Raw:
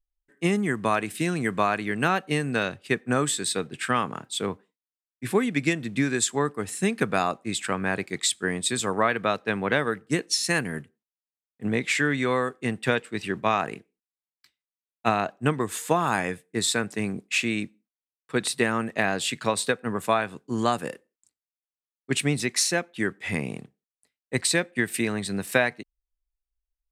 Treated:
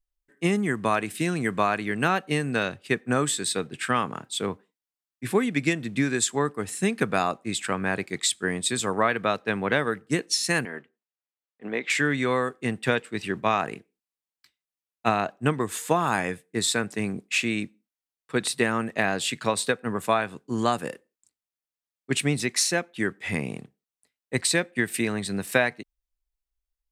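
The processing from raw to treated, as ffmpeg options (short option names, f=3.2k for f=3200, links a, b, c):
-filter_complex "[0:a]asettb=1/sr,asplit=3[a][b][c];[a]atrim=end=10.654[d];[b]atrim=start=10.65:end=11.9,asetpts=PTS-STARTPTS,afade=t=in:d=0.004:c=qsin,afade=t=out:st=1.246:d=0.004:c=qsin,highpass=360,lowpass=3.3k[e];[c]atrim=start=11.896[f];[d][e]acrossfade=d=0.004:c1=hsin:c2=qsin[g];[g][f]acrossfade=d=0.004:c1=qsin:c2=hsin"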